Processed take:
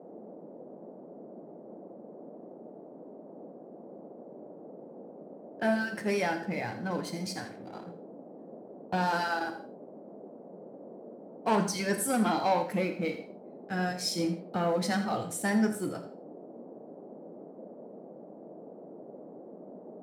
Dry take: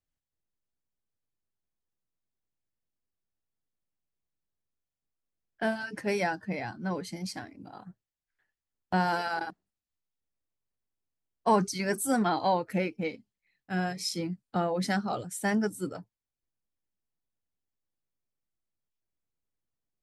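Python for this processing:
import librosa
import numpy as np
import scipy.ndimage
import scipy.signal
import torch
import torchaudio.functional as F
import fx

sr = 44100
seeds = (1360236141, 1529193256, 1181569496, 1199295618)

y = fx.leveller(x, sr, passes=2)
y = scipy.signal.sosfilt(scipy.signal.butter(2, 70.0, 'highpass', fs=sr, output='sos'), y)
y = y + 10.0 ** (-12.5 / 20.0) * np.pad(y, (int(82 * sr / 1000.0), 0))[:len(y)]
y = fx.rev_gated(y, sr, seeds[0], gate_ms=200, shape='falling', drr_db=6.5)
y = fx.dmg_noise_band(y, sr, seeds[1], low_hz=180.0, high_hz=640.0, level_db=-40.0)
y = y * librosa.db_to_amplitude(-7.0)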